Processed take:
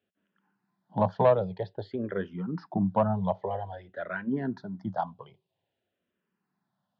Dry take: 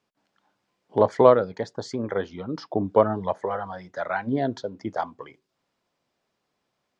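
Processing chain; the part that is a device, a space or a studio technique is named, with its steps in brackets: barber-pole phaser into a guitar amplifier (barber-pole phaser -0.51 Hz; saturation -9 dBFS, distortion -17 dB; cabinet simulation 88–3500 Hz, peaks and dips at 100 Hz +7 dB, 180 Hz +10 dB, 290 Hz -6 dB, 490 Hz -5 dB, 1.2 kHz -7 dB, 2.2 kHz -10 dB)

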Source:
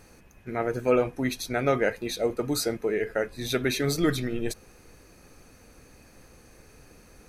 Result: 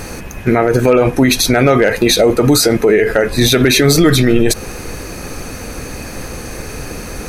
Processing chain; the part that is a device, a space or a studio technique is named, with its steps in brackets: loud club master (compression 2:1, threshold -29 dBFS, peak gain reduction 7 dB; hard clipper -19 dBFS, distortion -31 dB; loudness maximiser +27.5 dB); trim -1 dB

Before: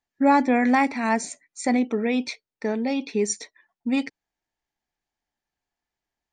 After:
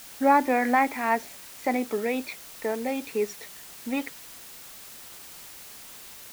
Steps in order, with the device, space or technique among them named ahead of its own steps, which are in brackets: wax cylinder (band-pass 360–2500 Hz; wow and flutter 40 cents; white noise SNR 16 dB)

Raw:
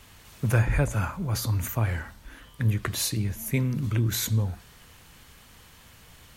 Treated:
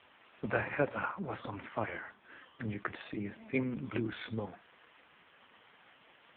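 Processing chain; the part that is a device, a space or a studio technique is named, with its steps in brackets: 2.66–3.34 s: dynamic bell 3.3 kHz, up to -6 dB, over -51 dBFS, Q 3.6; telephone (band-pass 320–3100 Hz; trim +1 dB; AMR-NB 4.75 kbps 8 kHz)

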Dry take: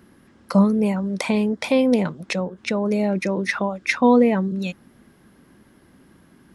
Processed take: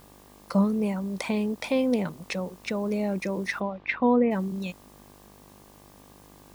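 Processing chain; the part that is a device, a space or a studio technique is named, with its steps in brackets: video cassette with head-switching buzz (mains buzz 50 Hz, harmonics 24, -48 dBFS -2 dB/octave; white noise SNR 30 dB); 3.59–4.30 s: low-pass 4 kHz -> 2.5 kHz 24 dB/octave; trim -6.5 dB

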